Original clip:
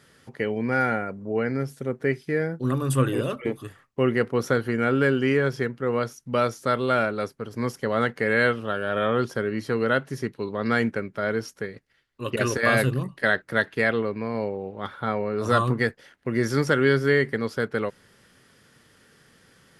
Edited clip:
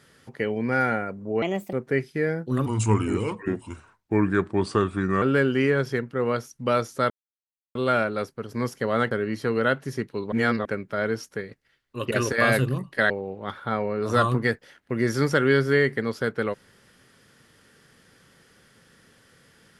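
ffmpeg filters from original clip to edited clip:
-filter_complex "[0:a]asplit=10[a][b][c][d][e][f][g][h][i][j];[a]atrim=end=1.424[k];[b]atrim=start=1.42:end=1.86,asetpts=PTS-STARTPTS,asetrate=62622,aresample=44100[l];[c]atrim=start=1.856:end=2.794[m];[d]atrim=start=2.79:end=4.89,asetpts=PTS-STARTPTS,asetrate=36162,aresample=44100,atrim=end_sample=112939,asetpts=PTS-STARTPTS[n];[e]atrim=start=4.886:end=6.77,asetpts=PTS-STARTPTS,afade=t=out:st=1.88:d=0.004:c=hsin,apad=pad_dur=0.65[o];[f]atrim=start=6.77:end=8.132,asetpts=PTS-STARTPTS,afade=t=in:d=0.004:c=hsin[p];[g]atrim=start=9.358:end=10.572[q];[h]atrim=start=10.568:end=10.902,asetpts=PTS-STARTPTS,areverse[r];[i]atrim=start=10.898:end=13.352[s];[j]atrim=start=14.458[t];[k][l]acrossfade=d=0.004:c1=hsin:c2=hsin[u];[u][m]acrossfade=d=0.004:c1=hsin:c2=hsin[v];[v][n]acrossfade=d=0.004:c1=hsin:c2=hsin[w];[o][p]concat=n=2:v=0:a=1[x];[w][x]acrossfade=d=0.004:c1=hsin:c2=hsin[y];[y][q]acrossfade=d=0.004:c1=hsin:c2=hsin[z];[z][r]acrossfade=d=0.004:c1=hsin:c2=hsin[aa];[aa][s]acrossfade=d=0.004:c1=hsin:c2=hsin[ab];[ab][t]acrossfade=d=0.004:c1=hsin:c2=hsin"

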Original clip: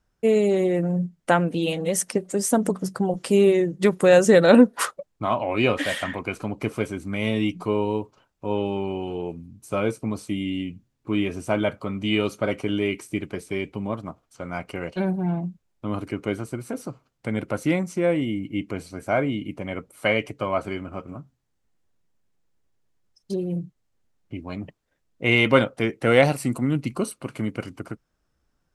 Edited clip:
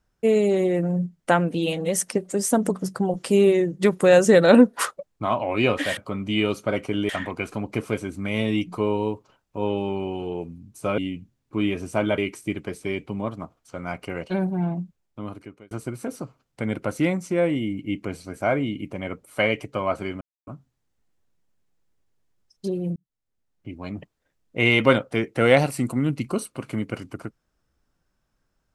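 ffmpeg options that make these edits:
-filter_complex "[0:a]asplit=9[a][b][c][d][e][f][g][h][i];[a]atrim=end=5.972[j];[b]atrim=start=11.718:end=12.842[k];[c]atrim=start=5.968:end=9.862[l];[d]atrim=start=10.518:end=11.722[m];[e]atrim=start=12.838:end=16.37,asetpts=PTS-STARTPTS,afade=t=out:st=2.622:d=0.91[n];[f]atrim=start=16.37:end=20.87,asetpts=PTS-STARTPTS,afade=t=in:d=0.004:c=hsin,afade=t=out:st=4.496:d=0.004:c=hsin[o];[g]atrim=start=20.87:end=21.13,asetpts=PTS-STARTPTS,volume=0[p];[h]atrim=start=21.13:end=23.62,asetpts=PTS-STARTPTS,afade=t=in:d=0.004:c=hsin,afade=t=out:st=2.486:d=0.004:c=hsin[q];[i]atrim=start=23.62,asetpts=PTS-STARTPTS,afade=t=in:d=0.99[r];[j][k]acrossfade=d=0.004:c1=hsin:c2=hsin[s];[s][l]acrossfade=d=0.004:c1=hsin:c2=hsin[t];[t][m]acrossfade=d=0.004:c1=hsin:c2=hsin[u];[n][o][p][q][r]concat=n=5:v=0:a=1[v];[u][v]acrossfade=d=0.004:c1=hsin:c2=hsin"

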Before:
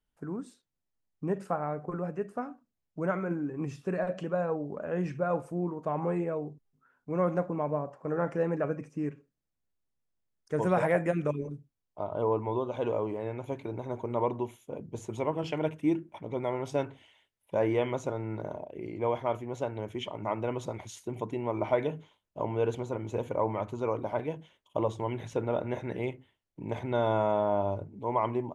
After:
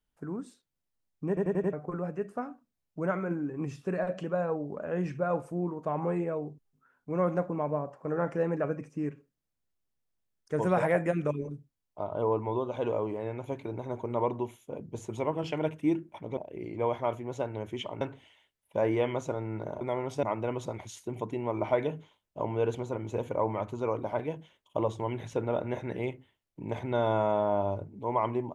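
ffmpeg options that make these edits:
-filter_complex "[0:a]asplit=10[a][b][c][d][e][f][g][h][i][j];[a]atrim=end=1.372[k];[b]atrim=start=1.278:end=1.372[l];[c]atrim=start=1.278:end=1.372[m];[d]atrim=start=1.278:end=1.372[n];[e]atrim=start=1.278:end=1.372[o];[f]atrim=start=1.728:end=16.372[p];[g]atrim=start=18.588:end=20.232[q];[h]atrim=start=16.788:end=18.592[r];[i]atrim=start=16.368:end=16.792[s];[j]atrim=start=20.228[t];[k][l]acrossfade=d=0.004:c1=hsin:c2=hsin[u];[u][m]acrossfade=d=0.004:c1=hsin:c2=hsin[v];[v][n]acrossfade=d=0.004:c1=hsin:c2=hsin[w];[w][o]acrossfade=d=0.004:c1=hsin:c2=hsin[x];[x][p]acrossfade=d=0.004:c1=hsin:c2=hsin[y];[y][q]acrossfade=d=0.004:c1=hsin:c2=hsin[z];[z][r]acrossfade=d=0.004:c1=hsin:c2=hsin[aa];[aa][s]acrossfade=d=0.004:c1=hsin:c2=hsin[ab];[ab][t]acrossfade=d=0.004:c1=hsin:c2=hsin"

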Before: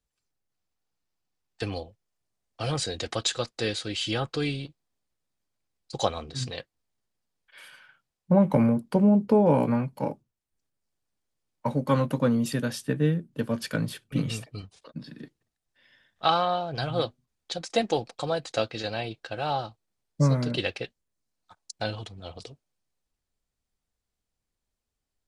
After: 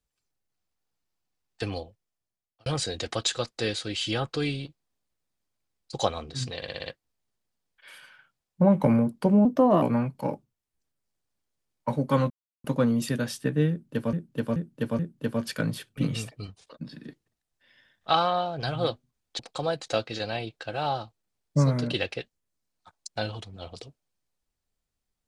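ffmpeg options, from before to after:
-filter_complex "[0:a]asplit=14[a][b][c][d][e][f][g][h][i][j][k][l][m][n];[a]atrim=end=2.66,asetpts=PTS-STARTPTS,afade=t=out:st=1.77:d=0.89[o];[b]atrim=start=2.66:end=6.622,asetpts=PTS-STARTPTS,afade=t=in:d=0.004:c=hsin[p];[c]atrim=start=6.558:end=6.622[q];[d]atrim=start=6.558:end=6.622[r];[e]atrim=start=6.558:end=6.622[s];[f]atrim=start=6.558:end=6.622[t];[g]atrim=start=6.558:end=9.154[u];[h]atrim=start=9.15:end=9.6,asetpts=PTS-STARTPTS,asetrate=53361,aresample=44100[v];[i]atrim=start=9.596:end=12.08,asetpts=PTS-STARTPTS,afade=t=out:st=2.48:d=0.004:c=hsin,apad=pad_dur=0.34[w];[j]atrim=start=12.08:end=13.572,asetpts=PTS-STARTPTS,afade=t=in:d=0.004:c=hsin[x];[k]atrim=start=13.138:end=13.572[y];[l]atrim=start=13.138:end=13.572[z];[m]atrim=start=13.138:end=17.542[aa];[n]atrim=start=18.028[ab];[o][p]concat=n=2:v=0:a=1[ac];[ac][q]acrossfade=d=0.004:c1=hsin:c2=hsin[ad];[ad][r]acrossfade=d=0.004:c1=hsin:c2=hsin[ae];[ae][s]acrossfade=d=0.004:c1=hsin:c2=hsin[af];[af][t]acrossfade=d=0.004:c1=hsin:c2=hsin[ag];[ag][u]acrossfade=d=0.004:c1=hsin:c2=hsin[ah];[ah][v]acrossfade=d=0.004:c1=hsin:c2=hsin[ai];[w][x]concat=n=2:v=0:a=1[aj];[ai][aj]acrossfade=d=0.004:c1=hsin:c2=hsin[ak];[ak][y]acrossfade=d=0.004:c1=hsin:c2=hsin[al];[al][z]acrossfade=d=0.004:c1=hsin:c2=hsin[am];[am][aa]acrossfade=d=0.004:c1=hsin:c2=hsin[an];[an][ab]acrossfade=d=0.004:c1=hsin:c2=hsin"

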